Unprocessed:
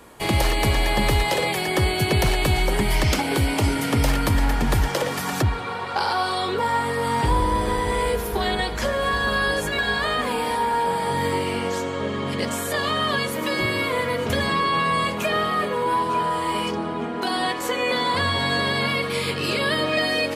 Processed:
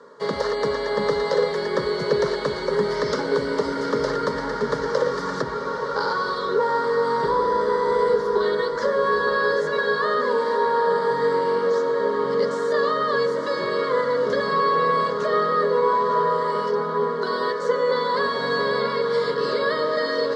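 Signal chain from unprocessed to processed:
loudspeaker in its box 190–5,000 Hz, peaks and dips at 220 Hz −8 dB, 420 Hz +9 dB, 3,100 Hz −7 dB
phaser with its sweep stopped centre 500 Hz, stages 8
feedback delay with all-pass diffusion 838 ms, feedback 60%, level −9 dB
level +2 dB

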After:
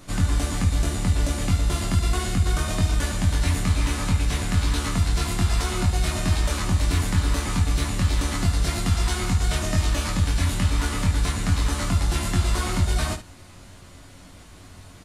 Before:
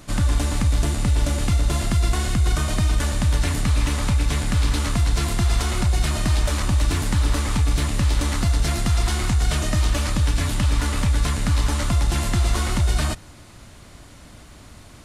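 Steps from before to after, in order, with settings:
ambience of single reflections 11 ms −8.5 dB, 22 ms −3.5 dB, 73 ms −11 dB
level −3.5 dB

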